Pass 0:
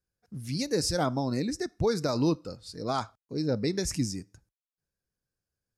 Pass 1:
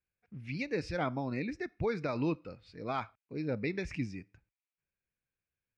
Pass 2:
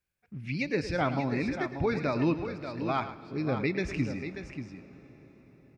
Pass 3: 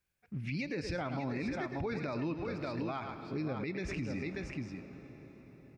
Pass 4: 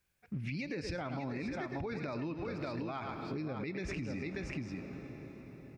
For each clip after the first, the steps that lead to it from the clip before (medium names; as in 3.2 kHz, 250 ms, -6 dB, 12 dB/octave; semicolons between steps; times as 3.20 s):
resonant low-pass 2.4 kHz, resonance Q 5; trim -6.5 dB
band-stop 480 Hz, Q 12; multi-tap echo 109/586 ms -12.5/-9 dB; on a send at -17 dB: reverberation RT60 5.8 s, pre-delay 116 ms; on the sum: trim +5 dB
compression 4:1, threshold -33 dBFS, peak gain reduction 9.5 dB; peak limiter -29.5 dBFS, peak gain reduction 7.5 dB; trim +1.5 dB
compression, threshold -40 dBFS, peak gain reduction 8 dB; trim +4.5 dB